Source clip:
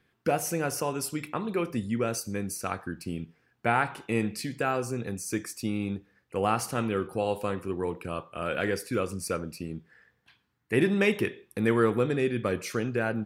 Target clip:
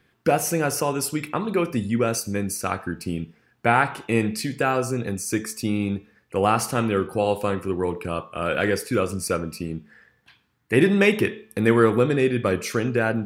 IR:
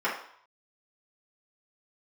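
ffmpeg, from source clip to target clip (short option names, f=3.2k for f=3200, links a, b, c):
-af "bandreject=f=218.4:t=h:w=4,bandreject=f=436.8:t=h:w=4,bandreject=f=655.2:t=h:w=4,bandreject=f=873.6:t=h:w=4,bandreject=f=1.092k:t=h:w=4,bandreject=f=1.3104k:t=h:w=4,bandreject=f=1.5288k:t=h:w=4,bandreject=f=1.7472k:t=h:w=4,bandreject=f=1.9656k:t=h:w=4,bandreject=f=2.184k:t=h:w=4,bandreject=f=2.4024k:t=h:w=4,bandreject=f=2.6208k:t=h:w=4,bandreject=f=2.8392k:t=h:w=4,bandreject=f=3.0576k:t=h:w=4,bandreject=f=3.276k:t=h:w=4,bandreject=f=3.4944k:t=h:w=4,bandreject=f=3.7128k:t=h:w=4,volume=6.5dB"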